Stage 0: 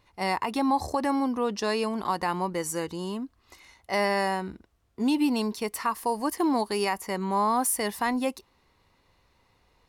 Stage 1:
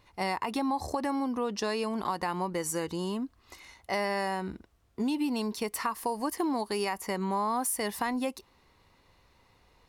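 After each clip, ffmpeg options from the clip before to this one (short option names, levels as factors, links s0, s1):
-af "acompressor=threshold=0.0282:ratio=3,volume=1.26"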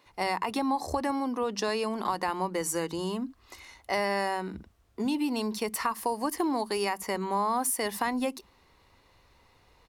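-filter_complex "[0:a]acrossover=split=180[s0][s1];[s0]adelay=60[s2];[s2][s1]amix=inputs=2:normalize=0,volume=1.26"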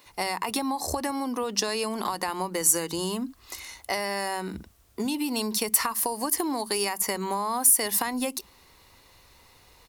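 -af "acompressor=threshold=0.0355:ratio=6,crystalizer=i=2.5:c=0,volume=1.5"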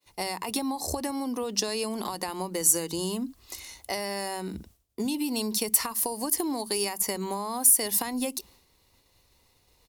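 -af "agate=range=0.0224:threshold=0.00355:ratio=3:detection=peak,equalizer=f=1400:w=0.82:g=-7.5"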